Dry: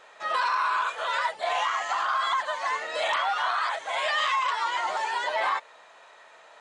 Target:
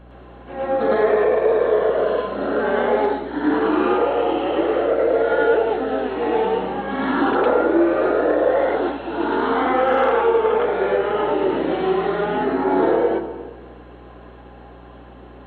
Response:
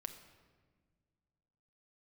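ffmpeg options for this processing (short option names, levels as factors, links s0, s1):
-filter_complex "[0:a]asetrate=18846,aresample=44100,asplit=2[s0][s1];[1:a]atrim=start_sample=2205,adelay=109[s2];[s1][s2]afir=irnorm=-1:irlink=0,volume=2.51[s3];[s0][s3]amix=inputs=2:normalize=0,aeval=exprs='val(0)+0.00501*(sin(2*PI*60*n/s)+sin(2*PI*2*60*n/s)/2+sin(2*PI*3*60*n/s)/3+sin(2*PI*4*60*n/s)/4+sin(2*PI*5*60*n/s)/5)':c=same,volume=1.33"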